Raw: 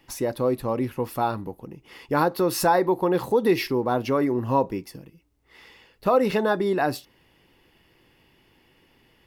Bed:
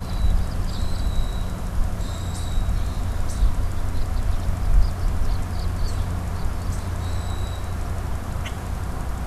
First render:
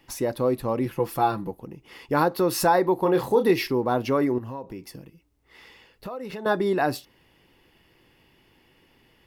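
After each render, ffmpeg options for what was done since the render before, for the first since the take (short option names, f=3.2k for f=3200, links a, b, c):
-filter_complex "[0:a]asettb=1/sr,asplit=3[a][b][c];[a]atrim=end=0.854[d];[b]atrim=start=0.85:end=1.51,asetpts=PTS-STARTPTS,afade=t=in:d=0.004:c=qsin,afade=t=out:st=0.656:d=0.004:c=qsin,aecho=1:1:5.9:0.65,atrim=end_sample=29106[e];[c]atrim=start=1.506[f];[d][e]acrossfade=d=0.004:c1=hsin:c2=qsin[g];[g][f]acrossfade=d=0.004:c1=qsin:c2=hsin,asettb=1/sr,asplit=3[h][i][j];[h]atrim=end=2.984[k];[i]atrim=start=2.98:end=3.51,asetpts=PTS-STARTPTS,afade=t=in:d=0.004:c=qsin,afade=t=out:st=0.526:d=0.004:c=qsin,asplit=2[l][m];[m]adelay=30,volume=-7dB[n];[l][n]amix=inputs=2:normalize=0,atrim=end_sample=23373[o];[j]atrim=start=3.506[p];[k][o]acrossfade=d=0.004:c1=hsin:c2=qsin[q];[q][p]acrossfade=d=0.004:c1=qsin:c2=hsin,asettb=1/sr,asplit=3[r][s][t];[r]atrim=end=4.384[u];[s]atrim=start=4.38:end=6.46,asetpts=PTS-STARTPTS,afade=t=in:d=0.004:c=qsin,afade=t=out:st=2.076:d=0.004:c=qsin,acompressor=threshold=-34dB:ratio=4:attack=3.2:release=140:knee=1:detection=peak[v];[t]atrim=start=6.456[w];[u][v]acrossfade=d=0.004:c1=hsin:c2=qsin[x];[x][w]acrossfade=d=0.004:c1=qsin:c2=hsin"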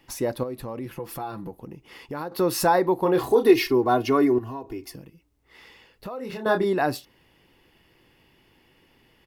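-filter_complex "[0:a]asettb=1/sr,asplit=3[a][b][c];[a]atrim=end=0.434[d];[b]atrim=start=0.43:end=2.32,asetpts=PTS-STARTPTS,afade=t=in:d=0.004:c=qsin,afade=t=out:st=1.886:d=0.004:c=qsin,acompressor=threshold=-32dB:ratio=3:attack=3.2:release=140:knee=1:detection=peak[e];[c]atrim=start=2.316[f];[d][e]acrossfade=d=0.004:c1=hsin:c2=qsin[g];[g][f]acrossfade=d=0.004:c1=qsin:c2=hsin,asettb=1/sr,asplit=3[h][i][j];[h]atrim=end=3.184[k];[i]atrim=start=3.18:end=4.95,asetpts=PTS-STARTPTS,afade=t=in:d=0.004:c=qsin,afade=t=out:st=1.766:d=0.004:c=qsin,aecho=1:1:2.8:0.88,atrim=end_sample=78057[l];[j]atrim=start=4.946[m];[k][l]acrossfade=d=0.004:c1=hsin:c2=qsin[n];[n][m]acrossfade=d=0.004:c1=qsin:c2=hsin,asplit=3[o][p][q];[o]afade=t=out:st=6.17:d=0.02[r];[p]asplit=2[s][t];[t]adelay=27,volume=-5dB[u];[s][u]amix=inputs=2:normalize=0,afade=t=in:st=6.17:d=0.02,afade=t=out:st=6.64:d=0.02[v];[q]afade=t=in:st=6.64:d=0.02[w];[r][v][w]amix=inputs=3:normalize=0"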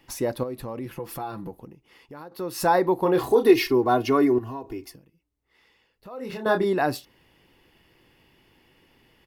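-filter_complex "[0:a]asplit=5[a][b][c][d][e];[a]atrim=end=1.75,asetpts=PTS-STARTPTS,afade=t=out:st=1.57:d=0.18:silence=0.354813[f];[b]atrim=start=1.75:end=2.53,asetpts=PTS-STARTPTS,volume=-9dB[g];[c]atrim=start=2.53:end=5,asetpts=PTS-STARTPTS,afade=t=in:d=0.18:silence=0.354813,afade=t=out:st=2.29:d=0.18:silence=0.251189[h];[d]atrim=start=5:end=6.04,asetpts=PTS-STARTPTS,volume=-12dB[i];[e]atrim=start=6.04,asetpts=PTS-STARTPTS,afade=t=in:d=0.18:silence=0.251189[j];[f][g][h][i][j]concat=n=5:v=0:a=1"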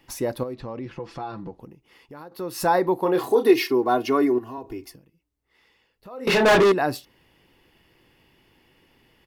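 -filter_complex "[0:a]asettb=1/sr,asplit=3[a][b][c];[a]atrim=end=0.544[d];[b]atrim=start=0.54:end=1.6,asetpts=PTS-STARTPTS,afade=t=in:d=0.004:c=qsin,afade=t=out:st=1.056:d=0.004:c=qsin,lowpass=f=5.9k:w=0.5412,lowpass=f=5.9k:w=1.3066[e];[c]atrim=start=1.596[f];[d][e]acrossfade=d=0.004:c1=hsin:c2=qsin[g];[g][f]acrossfade=d=0.004:c1=qsin:c2=hsin,asettb=1/sr,asplit=3[h][i][j];[h]atrim=end=2.974[k];[i]atrim=start=2.97:end=4.58,asetpts=PTS-STARTPTS,afade=t=in:d=0.004:c=qsin,afade=t=out:st=1.606:d=0.004:c=qsin,highpass=190[l];[j]atrim=start=4.576[m];[k][l]acrossfade=d=0.004:c1=hsin:c2=qsin[n];[n][m]acrossfade=d=0.004:c1=qsin:c2=hsin,asettb=1/sr,asplit=3[o][p][q];[o]atrim=end=6.274[r];[p]atrim=start=6.27:end=6.72,asetpts=PTS-STARTPTS,afade=t=in:d=0.004:c=qsin,afade=t=out:st=0.446:d=0.004:c=qsin,asplit=2[s][t];[t]highpass=f=720:p=1,volume=33dB,asoftclip=type=tanh:threshold=-9dB[u];[s][u]amix=inputs=2:normalize=0,lowpass=f=3.5k:p=1,volume=-6dB[v];[q]atrim=start=6.716[w];[r][v]acrossfade=d=0.004:c1=hsin:c2=qsin[x];[x][w]acrossfade=d=0.004:c1=qsin:c2=hsin"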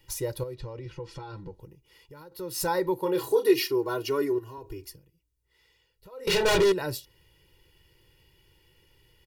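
-af "equalizer=f=850:w=0.33:g=-11.5,aecho=1:1:2.1:0.93"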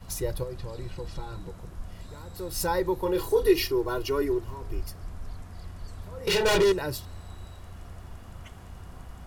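-filter_complex "[1:a]volume=-16dB[a];[0:a][a]amix=inputs=2:normalize=0"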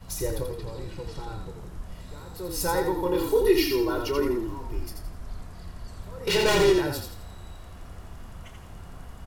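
-filter_complex "[0:a]asplit=2[a][b];[b]adelay=28,volume=-10.5dB[c];[a][c]amix=inputs=2:normalize=0,asplit=5[d][e][f][g][h];[e]adelay=84,afreqshift=-34,volume=-5dB[i];[f]adelay=168,afreqshift=-68,volume=-13.9dB[j];[g]adelay=252,afreqshift=-102,volume=-22.7dB[k];[h]adelay=336,afreqshift=-136,volume=-31.6dB[l];[d][i][j][k][l]amix=inputs=5:normalize=0"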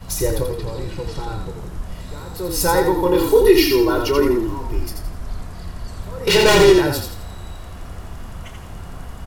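-af "volume=9dB,alimiter=limit=-1dB:level=0:latency=1"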